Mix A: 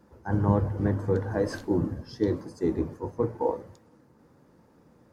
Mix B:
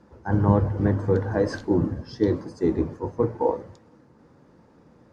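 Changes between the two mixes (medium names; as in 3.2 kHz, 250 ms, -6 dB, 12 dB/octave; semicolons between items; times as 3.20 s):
speech +4.0 dB; master: add low-pass 6.4 kHz 12 dB/octave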